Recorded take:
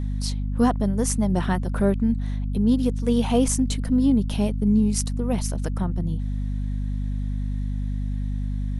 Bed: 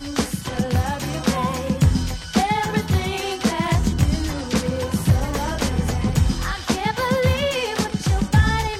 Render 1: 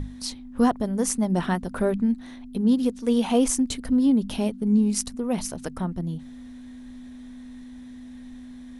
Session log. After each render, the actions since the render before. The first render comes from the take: hum notches 50/100/150/200 Hz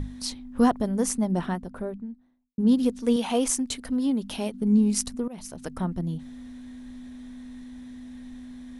0.78–2.58 s: studio fade out; 3.16–4.54 s: bass shelf 330 Hz -9 dB; 5.28–5.84 s: fade in, from -20.5 dB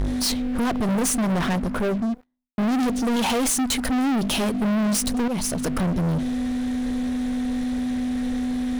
peak limiter -19.5 dBFS, peak gain reduction 10.5 dB; waveshaping leveller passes 5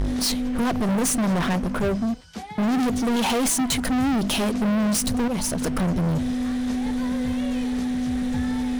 add bed -17 dB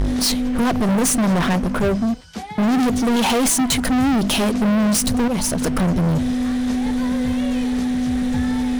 trim +4.5 dB

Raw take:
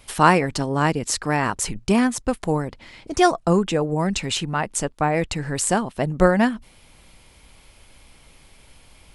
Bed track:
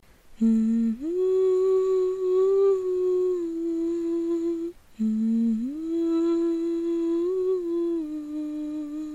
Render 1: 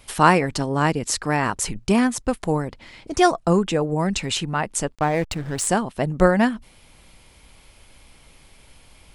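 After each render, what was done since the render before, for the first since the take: 4.95–5.67 s: hysteresis with a dead band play -28 dBFS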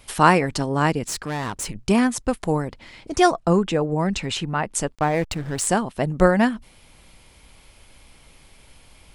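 1.07–1.86 s: valve stage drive 23 dB, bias 0.45; 3.29–4.72 s: treble shelf 9.1 kHz -> 5.1 kHz -9 dB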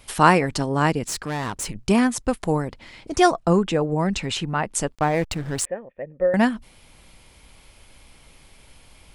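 5.65–6.34 s: cascade formant filter e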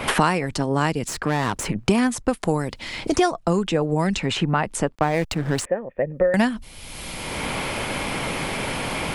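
three bands compressed up and down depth 100%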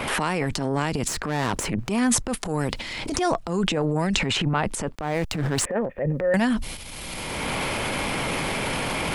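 peak limiter -13.5 dBFS, peak gain reduction 9 dB; transient shaper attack -8 dB, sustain +10 dB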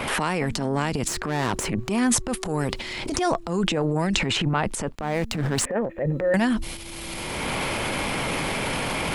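add bed track -20 dB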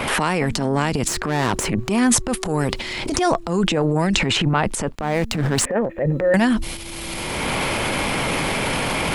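trim +4.5 dB; peak limiter -1 dBFS, peak gain reduction 1.5 dB

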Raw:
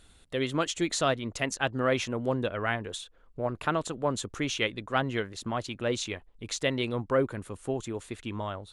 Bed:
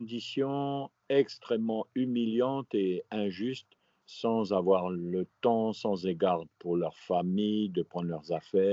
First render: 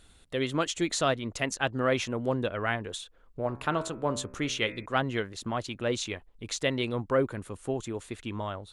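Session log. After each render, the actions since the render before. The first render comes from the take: 3.43–4.86 s: de-hum 64.69 Hz, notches 40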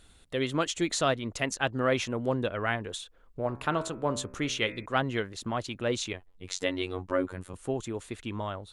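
6.13–7.54 s: robot voice 91.8 Hz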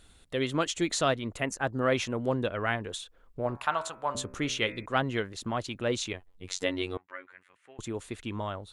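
1.34–1.81 s: peaking EQ 5.8 kHz -> 2.1 kHz -14 dB 0.76 oct; 3.57–4.15 s: resonant low shelf 540 Hz -12.5 dB, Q 1.5; 6.97–7.79 s: band-pass filter 2 kHz, Q 3.2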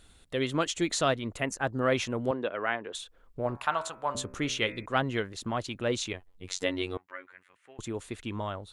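2.31–2.95 s: band-pass 290–3200 Hz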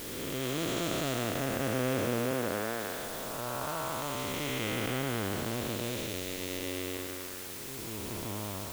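spectral blur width 688 ms; in parallel at -7 dB: word length cut 6-bit, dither triangular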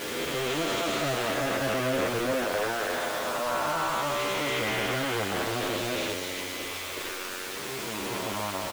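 overdrive pedal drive 27 dB, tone 2.6 kHz, clips at -15.5 dBFS; endless flanger 9.6 ms -0.3 Hz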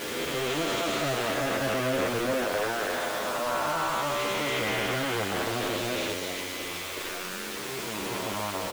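add bed -17.5 dB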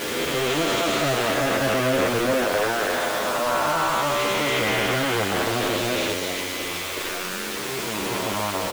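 trim +6 dB

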